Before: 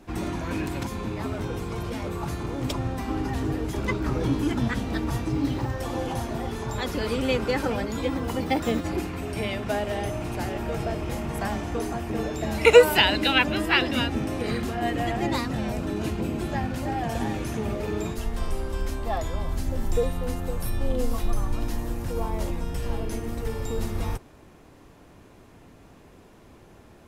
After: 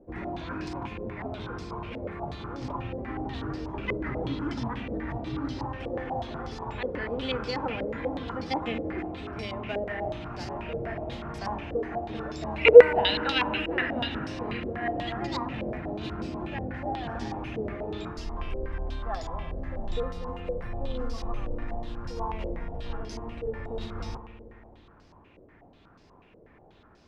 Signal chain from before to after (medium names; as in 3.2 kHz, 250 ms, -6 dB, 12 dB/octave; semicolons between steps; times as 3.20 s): spring tank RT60 2.9 s, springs 54 ms, chirp 55 ms, DRR 9 dB; step-sequenced low-pass 8.2 Hz 520–5100 Hz; trim -8 dB